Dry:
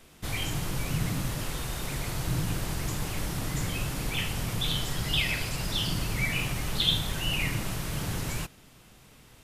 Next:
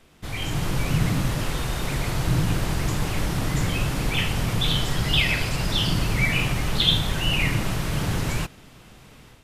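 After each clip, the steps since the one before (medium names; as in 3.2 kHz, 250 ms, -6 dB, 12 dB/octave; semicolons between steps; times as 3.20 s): treble shelf 6.2 kHz -8.5 dB; level rider gain up to 7.5 dB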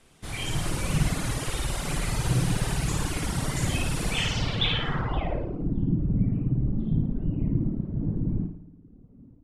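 flutter echo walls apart 9.5 m, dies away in 1.2 s; reverb removal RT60 0.9 s; low-pass sweep 9.8 kHz -> 260 Hz, 4.10–5.73 s; trim -4 dB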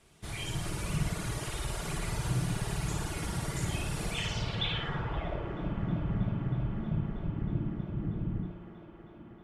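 in parallel at +1 dB: compression, threshold -33 dBFS, peak gain reduction 14.5 dB; on the sum: comb of notches 260 Hz; feedback echo behind a band-pass 318 ms, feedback 85%, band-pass 790 Hz, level -7.5 dB; trim -8.5 dB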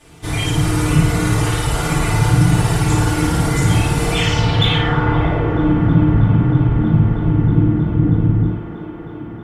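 in parallel at -10 dB: hard clipper -32 dBFS, distortion -9 dB; on the sum: FDN reverb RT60 0.57 s, low-frequency decay 1.25×, high-frequency decay 0.4×, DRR -6.5 dB; trim +8 dB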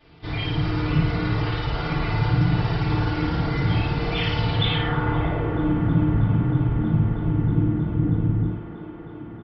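resampled via 11.025 kHz; trim -7 dB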